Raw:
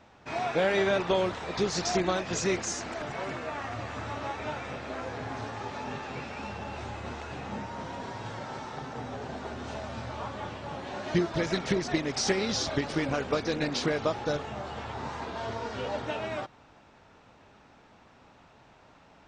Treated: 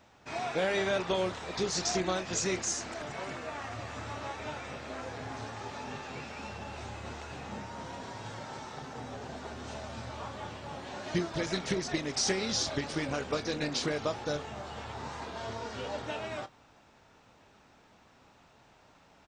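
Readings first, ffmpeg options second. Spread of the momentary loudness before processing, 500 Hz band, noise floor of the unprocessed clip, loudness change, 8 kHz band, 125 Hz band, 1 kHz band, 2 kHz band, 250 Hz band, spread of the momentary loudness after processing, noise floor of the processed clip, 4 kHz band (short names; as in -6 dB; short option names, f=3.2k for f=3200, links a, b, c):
11 LU, -4.0 dB, -57 dBFS, -3.0 dB, +1.5 dB, -4.0 dB, -4.0 dB, -3.0 dB, -4.5 dB, 12 LU, -61 dBFS, -0.5 dB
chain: -filter_complex "[0:a]asplit=2[a][b];[b]adelay=27,volume=-13.5dB[c];[a][c]amix=inputs=2:normalize=0,crystalizer=i=1.5:c=0,volume=-4.5dB"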